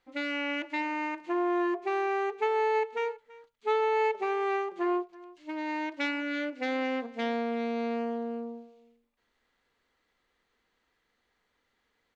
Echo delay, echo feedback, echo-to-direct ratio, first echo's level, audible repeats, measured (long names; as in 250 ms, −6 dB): 331 ms, repeats not evenly spaced, −20.5 dB, −20.5 dB, 1